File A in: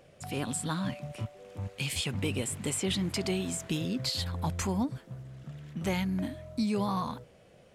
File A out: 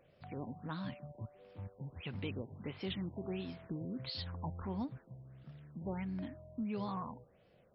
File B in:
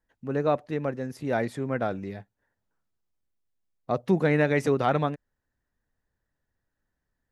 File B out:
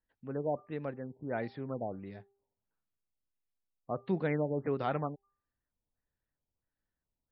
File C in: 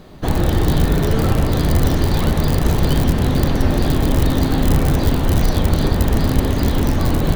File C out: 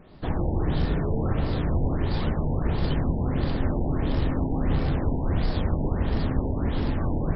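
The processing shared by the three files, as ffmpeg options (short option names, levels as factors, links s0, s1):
-af "bandreject=f=397.5:t=h:w=4,bandreject=f=795:t=h:w=4,bandreject=f=1192.5:t=h:w=4,afftfilt=real='re*lt(b*sr/1024,970*pow(5600/970,0.5+0.5*sin(2*PI*1.5*pts/sr)))':imag='im*lt(b*sr/1024,970*pow(5600/970,0.5+0.5*sin(2*PI*1.5*pts/sr)))':win_size=1024:overlap=0.75,volume=0.355"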